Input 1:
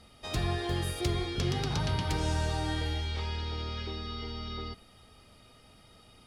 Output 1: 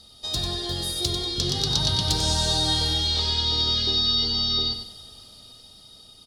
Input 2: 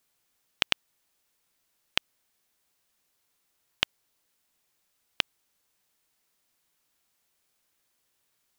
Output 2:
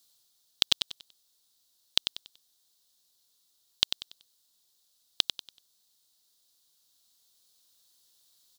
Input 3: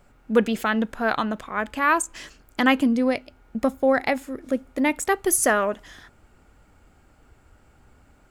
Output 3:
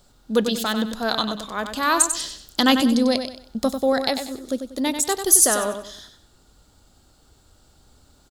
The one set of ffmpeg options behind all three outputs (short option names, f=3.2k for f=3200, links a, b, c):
-filter_complex "[0:a]highshelf=f=3k:t=q:w=3:g=9,dynaudnorm=f=310:g=13:m=11.5dB,aeval=exprs='1*(cos(1*acos(clip(val(0)/1,-1,1)))-cos(1*PI/2))+0.02*(cos(2*acos(clip(val(0)/1,-1,1)))-cos(2*PI/2))':c=same,asplit=2[a][b];[b]aecho=0:1:95|190|285|380:0.398|0.123|0.0383|0.0119[c];[a][c]amix=inputs=2:normalize=0,volume=-1dB"